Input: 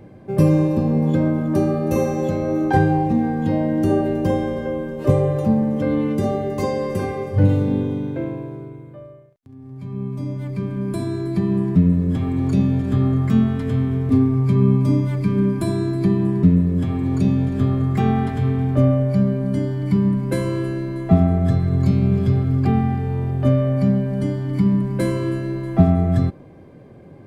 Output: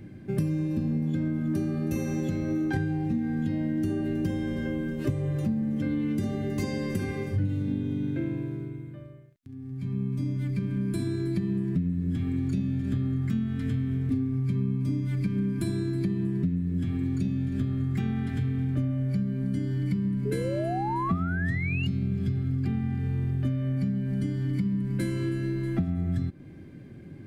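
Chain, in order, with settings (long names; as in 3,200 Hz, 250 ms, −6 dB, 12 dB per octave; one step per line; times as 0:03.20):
flat-topped bell 710 Hz −12.5 dB
sound drawn into the spectrogram rise, 0:20.25–0:21.87, 400–2,900 Hz −25 dBFS
downward compressor 6 to 1, threshold −25 dBFS, peak gain reduction 15.5 dB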